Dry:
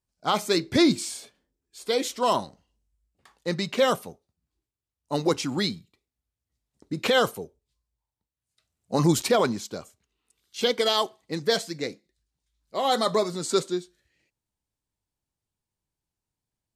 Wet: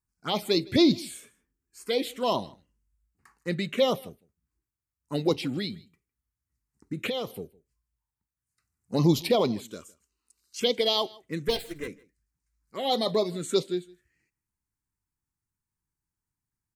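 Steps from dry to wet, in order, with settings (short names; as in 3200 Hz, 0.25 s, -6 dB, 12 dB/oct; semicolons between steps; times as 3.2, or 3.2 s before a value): 11.48–11.88 minimum comb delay 2.5 ms; envelope phaser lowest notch 590 Hz, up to 1600 Hz, full sweep at -18.5 dBFS; 5.54–7.3 compressor 6:1, threshold -28 dBFS, peak gain reduction 9.5 dB; 9.68–10.6 ten-band EQ 125 Hz -11 dB, 2000 Hz -8 dB, 4000 Hz +12 dB, 8000 Hz +4 dB; on a send: echo 0.157 s -24 dB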